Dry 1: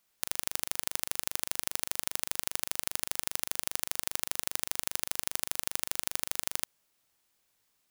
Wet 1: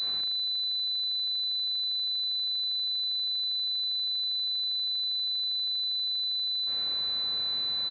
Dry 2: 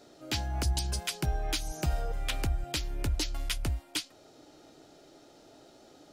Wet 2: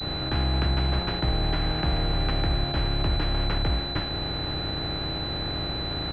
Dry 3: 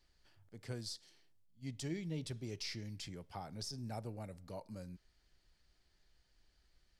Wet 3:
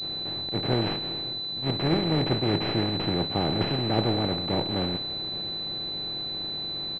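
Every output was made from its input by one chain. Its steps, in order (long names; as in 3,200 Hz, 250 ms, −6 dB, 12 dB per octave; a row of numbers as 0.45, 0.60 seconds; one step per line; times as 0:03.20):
compressor on every frequency bin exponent 0.2
downward expander −27 dBFS
repeating echo 571 ms, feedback 54%, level −23 dB
switching amplifier with a slow clock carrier 4,000 Hz
loudness normalisation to −27 LKFS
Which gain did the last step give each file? +11.5, 0.0, +20.5 decibels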